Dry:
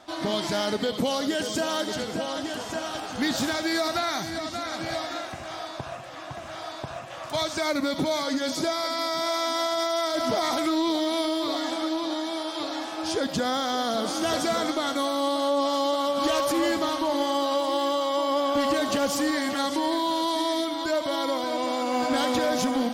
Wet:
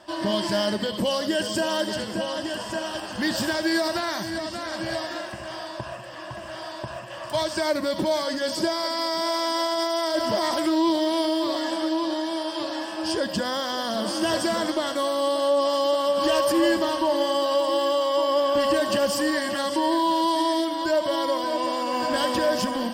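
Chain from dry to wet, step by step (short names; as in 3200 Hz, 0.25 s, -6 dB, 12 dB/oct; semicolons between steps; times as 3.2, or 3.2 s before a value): ripple EQ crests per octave 1.3, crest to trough 10 dB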